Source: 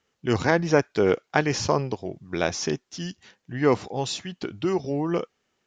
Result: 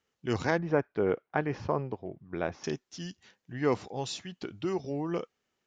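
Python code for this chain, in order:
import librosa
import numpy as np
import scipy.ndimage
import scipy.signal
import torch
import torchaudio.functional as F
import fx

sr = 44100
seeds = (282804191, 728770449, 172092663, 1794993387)

y = fx.lowpass(x, sr, hz=1800.0, slope=12, at=(0.58, 2.64))
y = F.gain(torch.from_numpy(y), -7.0).numpy()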